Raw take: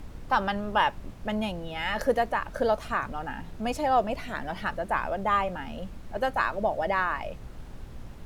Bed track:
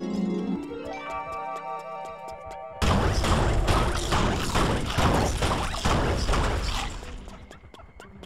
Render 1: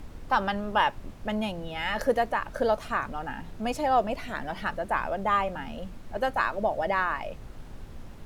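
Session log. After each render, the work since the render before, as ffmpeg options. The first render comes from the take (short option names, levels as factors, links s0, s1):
-af "bandreject=f=60:t=h:w=4,bandreject=f=120:t=h:w=4,bandreject=f=180:t=h:w=4"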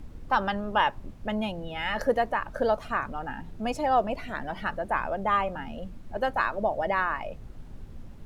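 -af "afftdn=nr=7:nf=-44"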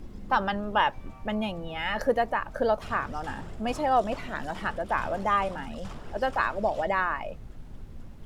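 -filter_complex "[1:a]volume=0.0944[s0];[0:a][s0]amix=inputs=2:normalize=0"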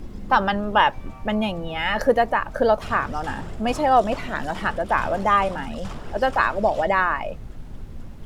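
-af "volume=2.11"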